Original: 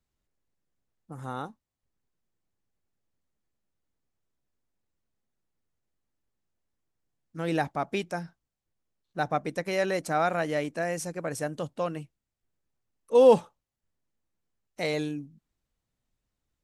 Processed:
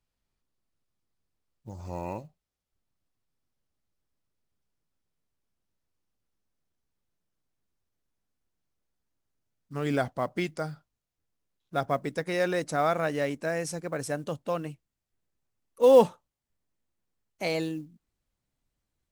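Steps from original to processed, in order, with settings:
gliding playback speed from 64% → 110%
floating-point word with a short mantissa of 4 bits

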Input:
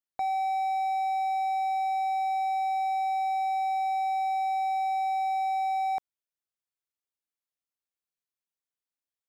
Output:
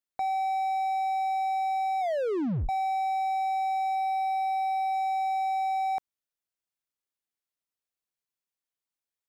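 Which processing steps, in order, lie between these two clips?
0:02.00: tape stop 0.69 s
0:03.95–0:04.94: parametric band 6,900 Hz −8 dB 0.2 octaves

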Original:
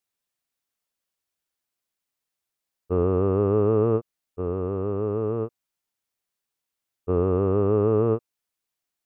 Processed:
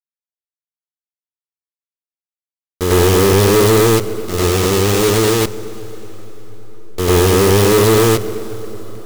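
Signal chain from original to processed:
hold until the input has moved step −27.5 dBFS
backwards echo 99 ms −7.5 dB
dense smooth reverb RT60 4.7 s, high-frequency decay 0.75×, DRR 18 dB
leveller curve on the samples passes 3
high-shelf EQ 2,000 Hz +8 dB
level +3 dB

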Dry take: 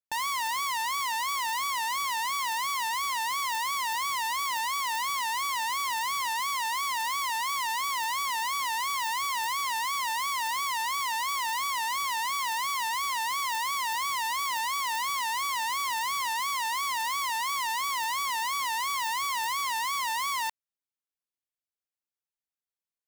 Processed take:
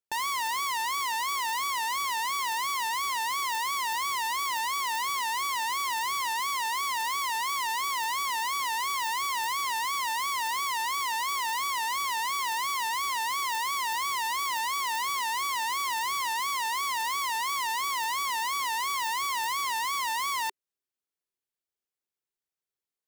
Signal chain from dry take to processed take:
parametric band 390 Hz +9 dB 0.39 octaves

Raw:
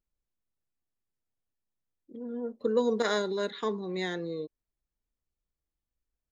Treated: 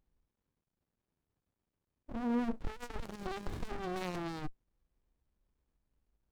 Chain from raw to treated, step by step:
0:02.59–0:04.15: high-pass filter 350 Hz 24 dB per octave
tube saturation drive 32 dB, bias 0.3
windowed peak hold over 65 samples
level +11.5 dB

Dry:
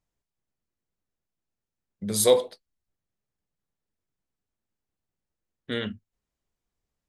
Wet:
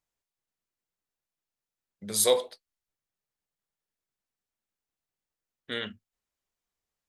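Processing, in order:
low-shelf EQ 420 Hz −11.5 dB

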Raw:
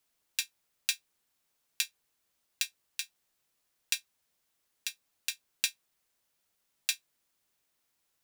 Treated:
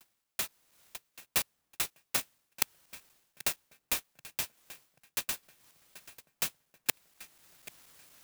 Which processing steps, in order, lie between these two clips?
slices reordered back to front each 238 ms, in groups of 3
sine wavefolder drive 15 dB, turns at −4 dBFS
high-shelf EQ 3,300 Hz +9.5 dB
pitch vibrato 0.39 Hz 29 cents
parametric band 140 Hz +6 dB
reversed playback
downward compressor 4 to 1, threshold −30 dBFS, peak gain reduction 22.5 dB
reversed playback
transient designer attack +5 dB, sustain −7 dB
sample-and-hold tremolo
on a send: feedback echo with a low-pass in the loop 785 ms, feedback 60%, low-pass 1,100 Hz, level −5.5 dB
on the sum: converter with an unsteady clock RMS 0.07 ms
level −4.5 dB

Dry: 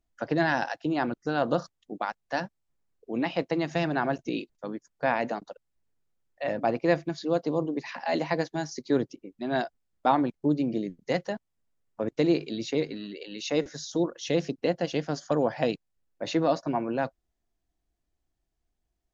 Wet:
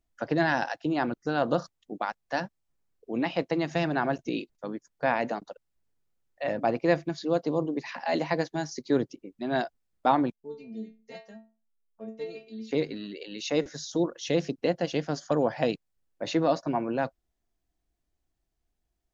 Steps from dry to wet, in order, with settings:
0:10.32–0:12.71: stiff-string resonator 220 Hz, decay 0.33 s, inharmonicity 0.002

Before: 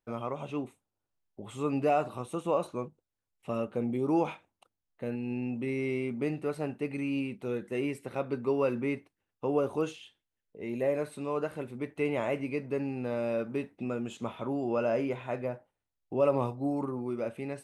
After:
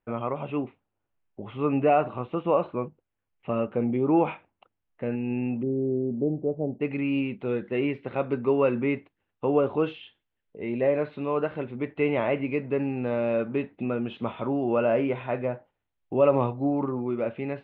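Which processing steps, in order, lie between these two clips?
Butterworth low-pass 3,000 Hz 36 dB per octave, from 0:05.61 690 Hz, from 0:06.80 3,500 Hz
level +5.5 dB

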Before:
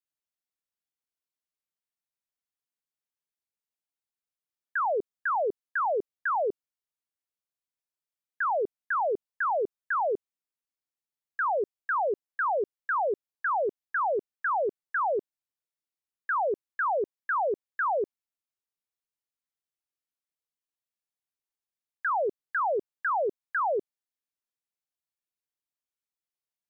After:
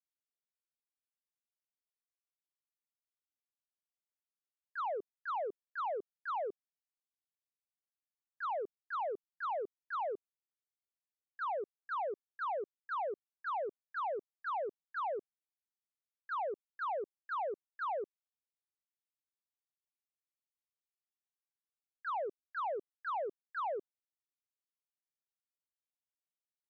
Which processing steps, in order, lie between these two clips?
low-shelf EQ 160 Hz −6.5 dB
noise gate −25 dBFS, range −24 dB
treble cut that deepens with the level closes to 1,200 Hz, closed at −39 dBFS
soft clipping −37.5 dBFS, distortion −23 dB
level +7 dB

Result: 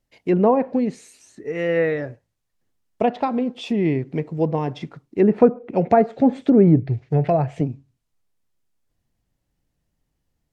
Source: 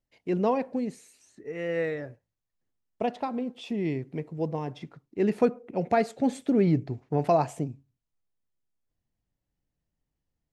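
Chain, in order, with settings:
treble cut that deepens with the level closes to 1,100 Hz, closed at −20.5 dBFS
0:06.80–0:07.61: octave-band graphic EQ 125/250/1,000/2,000/4,000 Hz +6/−10/−12/+6/+3 dB
level +9 dB

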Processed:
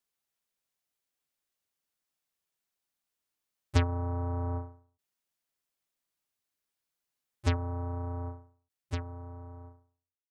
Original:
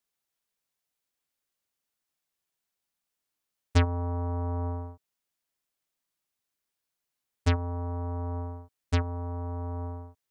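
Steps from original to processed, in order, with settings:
fade-out on the ending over 2.51 s
pitch-shifted copies added +5 semitones −15 dB
every ending faded ahead of time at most 130 dB per second
level −2 dB

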